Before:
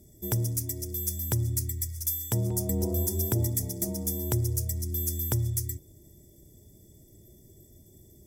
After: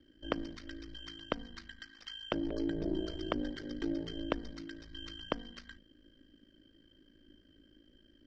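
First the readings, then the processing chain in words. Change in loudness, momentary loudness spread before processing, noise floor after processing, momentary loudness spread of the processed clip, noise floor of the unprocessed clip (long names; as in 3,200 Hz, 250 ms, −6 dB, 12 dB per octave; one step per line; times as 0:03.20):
−10.5 dB, 4 LU, −65 dBFS, 14 LU, −56 dBFS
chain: single-sideband voice off tune −330 Hz 290–3,600 Hz
in parallel at −2.5 dB: brickwall limiter −33 dBFS, peak gain reduction 11 dB
on the sum: ring modulation 27 Hz
low shelf with overshoot 190 Hz −13 dB, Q 1.5
level +6.5 dB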